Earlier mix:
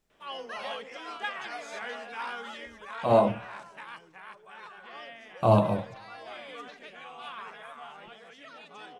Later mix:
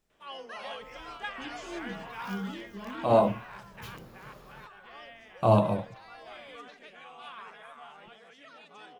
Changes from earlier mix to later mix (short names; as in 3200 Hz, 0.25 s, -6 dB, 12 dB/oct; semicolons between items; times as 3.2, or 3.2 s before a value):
speech: send -9.0 dB; first sound -3.5 dB; second sound: unmuted